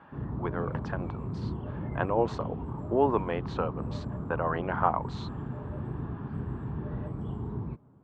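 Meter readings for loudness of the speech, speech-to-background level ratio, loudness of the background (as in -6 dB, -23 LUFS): -31.5 LUFS, 5.0 dB, -36.5 LUFS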